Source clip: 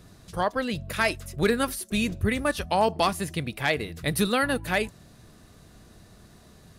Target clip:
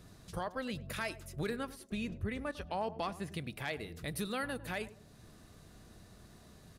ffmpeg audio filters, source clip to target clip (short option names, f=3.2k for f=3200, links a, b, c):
-filter_complex "[0:a]asettb=1/sr,asplit=3[a][b][c];[a]atrim=end=1.564[d];[b]atrim=start=1.56:end=3.32,asetpts=PTS-STARTPTS,afade=t=in:d=0.004:c=qsin,afade=t=out:st=1.756:d=0.004:c=qsin,lowpass=f=3k:p=1[e];[c]atrim=start=3.316[f];[d][e]acrossfade=d=0.004:c1=hsin:c2=qsin[g];[g][f]acrossfade=d=0.004:c1=qsin:c2=hsin,alimiter=limit=-22.5dB:level=0:latency=1:release=494,asplit=2[h][i];[i]adelay=101,lowpass=f=990:p=1,volume=-14.5dB,asplit=2[j][k];[k]adelay=101,lowpass=f=990:p=1,volume=0.38,asplit=2[l][m];[m]adelay=101,lowpass=f=990:p=1,volume=0.38,asplit=2[n][o];[o]adelay=101,lowpass=f=990:p=1,volume=0.38[p];[h][j][l][n][p]amix=inputs=5:normalize=0,volume=-5dB"